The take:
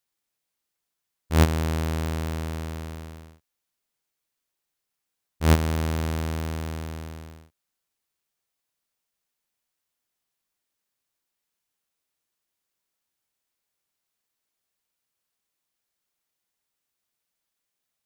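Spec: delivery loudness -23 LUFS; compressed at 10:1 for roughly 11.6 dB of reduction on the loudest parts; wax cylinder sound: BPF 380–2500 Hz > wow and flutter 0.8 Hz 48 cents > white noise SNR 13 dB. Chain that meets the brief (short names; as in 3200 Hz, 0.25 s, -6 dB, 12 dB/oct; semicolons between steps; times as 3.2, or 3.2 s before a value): compressor 10:1, threshold -25 dBFS; BPF 380–2500 Hz; wow and flutter 0.8 Hz 48 cents; white noise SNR 13 dB; gain +17 dB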